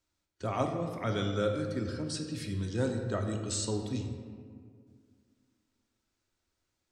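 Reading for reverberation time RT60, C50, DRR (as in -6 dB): 2.1 s, 5.5 dB, 2.5 dB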